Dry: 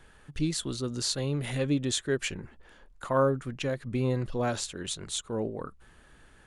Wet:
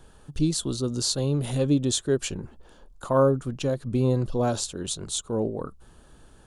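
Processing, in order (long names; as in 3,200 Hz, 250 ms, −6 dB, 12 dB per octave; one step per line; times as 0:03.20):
parametric band 2,000 Hz −14.5 dB 0.91 octaves
level +5.5 dB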